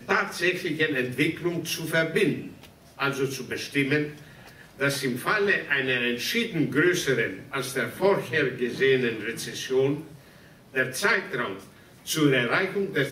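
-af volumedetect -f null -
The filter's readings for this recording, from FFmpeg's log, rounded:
mean_volume: -26.4 dB
max_volume: -6.7 dB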